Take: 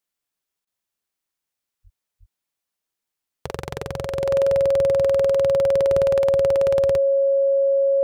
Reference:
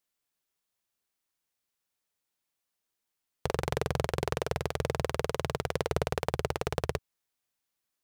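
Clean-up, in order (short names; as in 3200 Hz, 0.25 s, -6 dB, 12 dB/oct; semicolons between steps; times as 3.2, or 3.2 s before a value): notch 550 Hz, Q 30; de-plosive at 1.83/2.19; interpolate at 0.65, 19 ms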